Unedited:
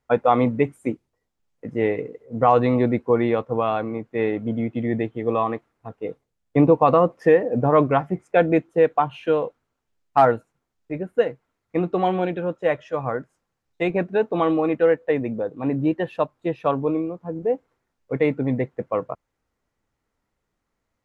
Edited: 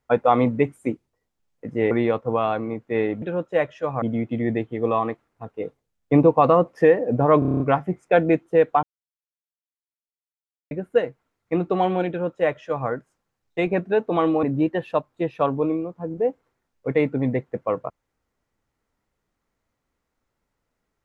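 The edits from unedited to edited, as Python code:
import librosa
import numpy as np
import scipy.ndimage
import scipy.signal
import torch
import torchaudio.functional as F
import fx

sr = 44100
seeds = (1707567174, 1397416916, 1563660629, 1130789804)

y = fx.edit(x, sr, fx.cut(start_s=1.91, length_s=1.24),
    fx.stutter(start_s=7.83, slice_s=0.03, count=8),
    fx.silence(start_s=9.06, length_s=1.88),
    fx.duplicate(start_s=12.32, length_s=0.8, to_s=4.46),
    fx.cut(start_s=14.66, length_s=1.02), tone=tone)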